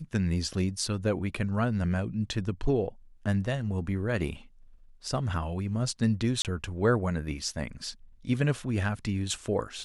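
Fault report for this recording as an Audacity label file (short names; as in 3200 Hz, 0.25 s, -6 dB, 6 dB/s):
6.420000	6.450000	gap 28 ms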